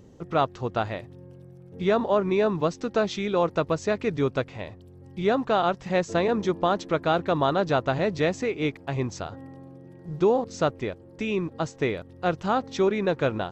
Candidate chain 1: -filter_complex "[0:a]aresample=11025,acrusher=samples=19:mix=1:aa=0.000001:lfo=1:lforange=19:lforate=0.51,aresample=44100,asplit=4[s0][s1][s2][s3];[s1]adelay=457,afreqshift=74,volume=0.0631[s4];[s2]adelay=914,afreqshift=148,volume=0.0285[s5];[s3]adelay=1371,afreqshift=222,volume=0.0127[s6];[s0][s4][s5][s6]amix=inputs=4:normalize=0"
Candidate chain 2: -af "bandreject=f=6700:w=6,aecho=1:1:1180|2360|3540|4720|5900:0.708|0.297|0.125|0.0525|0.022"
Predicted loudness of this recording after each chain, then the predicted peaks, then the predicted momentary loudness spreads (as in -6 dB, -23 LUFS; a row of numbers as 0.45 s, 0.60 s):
-27.0 LUFS, -24.5 LUFS; -9.5 dBFS, -9.0 dBFS; 16 LU, 7 LU